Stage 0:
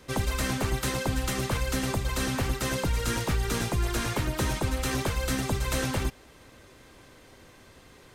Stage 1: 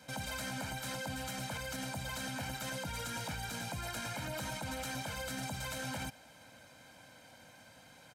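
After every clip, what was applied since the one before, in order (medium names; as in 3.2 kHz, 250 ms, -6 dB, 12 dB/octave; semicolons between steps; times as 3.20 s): high-pass 160 Hz 12 dB/octave; comb 1.3 ms, depth 90%; peak limiter -26 dBFS, peak gain reduction 11 dB; trim -5 dB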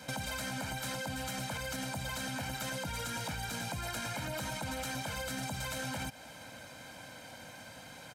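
compression, threshold -43 dBFS, peak gain reduction 7 dB; trim +8 dB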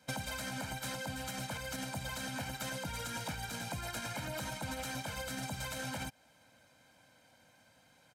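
upward expansion 2.5:1, over -47 dBFS; trim +1.5 dB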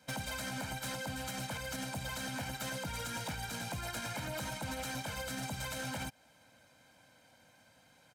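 overload inside the chain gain 35 dB; trim +1 dB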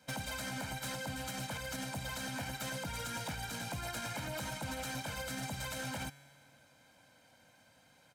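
feedback comb 140 Hz, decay 1.9 s, mix 60%; trim +7 dB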